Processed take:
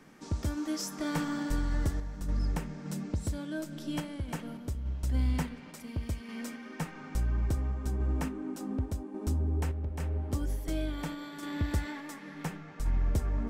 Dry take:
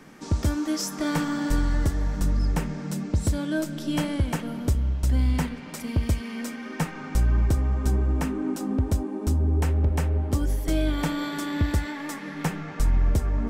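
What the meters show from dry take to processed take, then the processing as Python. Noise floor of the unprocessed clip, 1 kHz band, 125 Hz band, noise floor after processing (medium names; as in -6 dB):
-38 dBFS, -8.0 dB, -8.5 dB, -47 dBFS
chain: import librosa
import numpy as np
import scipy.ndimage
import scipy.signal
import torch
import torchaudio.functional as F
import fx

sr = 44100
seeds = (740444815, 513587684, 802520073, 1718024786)

y = fx.tremolo_random(x, sr, seeds[0], hz=3.5, depth_pct=55)
y = y * 10.0 ** (-6.0 / 20.0)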